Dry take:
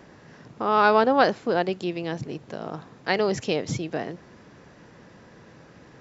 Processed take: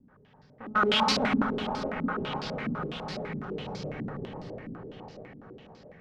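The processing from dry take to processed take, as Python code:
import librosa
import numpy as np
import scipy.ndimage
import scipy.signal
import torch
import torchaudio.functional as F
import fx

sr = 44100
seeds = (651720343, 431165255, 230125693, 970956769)

p1 = np.where(x < 0.0, 10.0 ** (-12.0 / 20.0) * x, x)
p2 = fx.low_shelf(p1, sr, hz=120.0, db=4.5)
p3 = fx.level_steps(p2, sr, step_db=20)
p4 = (np.mod(10.0 ** (16.0 / 20.0) * p3 + 1.0, 2.0) - 1.0) / 10.0 ** (16.0 / 20.0)
p5 = fx.notch_comb(p4, sr, f0_hz=340.0)
p6 = p5 + fx.echo_opening(p5, sr, ms=250, hz=200, octaves=1, feedback_pct=70, wet_db=0, dry=0)
p7 = fx.rev_plate(p6, sr, seeds[0], rt60_s=2.5, hf_ratio=0.75, predelay_ms=0, drr_db=-2.0)
p8 = fx.filter_held_lowpass(p7, sr, hz=12.0, low_hz=260.0, high_hz=4800.0)
y = F.gain(torch.from_numpy(p8), -2.5).numpy()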